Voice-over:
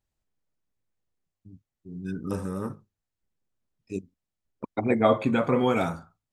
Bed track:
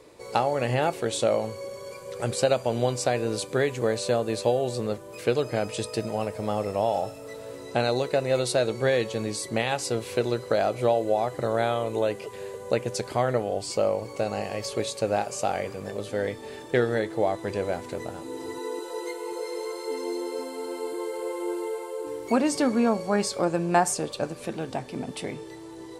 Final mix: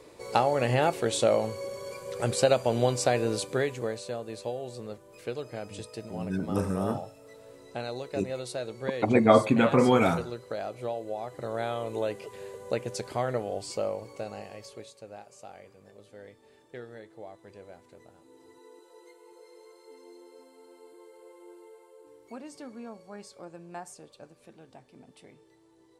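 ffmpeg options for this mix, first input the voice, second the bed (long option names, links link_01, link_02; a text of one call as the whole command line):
ffmpeg -i stem1.wav -i stem2.wav -filter_complex "[0:a]adelay=4250,volume=2dB[link_01];[1:a]volume=6dB,afade=type=out:start_time=3.23:duration=0.82:silence=0.281838,afade=type=in:start_time=11.19:duration=0.73:silence=0.501187,afade=type=out:start_time=13.56:duration=1.4:silence=0.177828[link_02];[link_01][link_02]amix=inputs=2:normalize=0" out.wav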